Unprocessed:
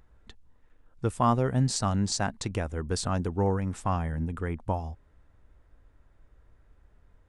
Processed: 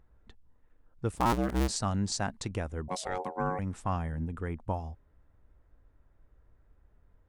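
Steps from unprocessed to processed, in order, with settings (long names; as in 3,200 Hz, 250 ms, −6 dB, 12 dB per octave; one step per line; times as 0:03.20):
0:01.12–0:01.70: sub-harmonics by changed cycles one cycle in 2, inverted
0:02.88–0:03.59: ring modulation 640 Hz
one half of a high-frequency compander decoder only
level −3.5 dB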